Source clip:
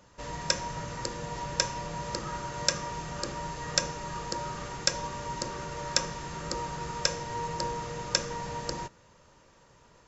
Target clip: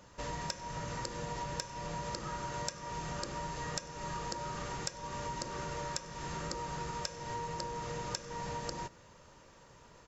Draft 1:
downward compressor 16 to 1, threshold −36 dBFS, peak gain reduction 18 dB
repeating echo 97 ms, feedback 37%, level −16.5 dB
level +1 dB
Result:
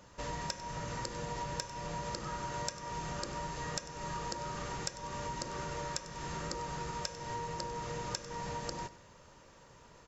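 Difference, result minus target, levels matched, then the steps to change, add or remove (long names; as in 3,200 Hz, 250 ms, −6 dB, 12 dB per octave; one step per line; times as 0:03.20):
echo-to-direct +9 dB
change: repeating echo 97 ms, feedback 37%, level −25.5 dB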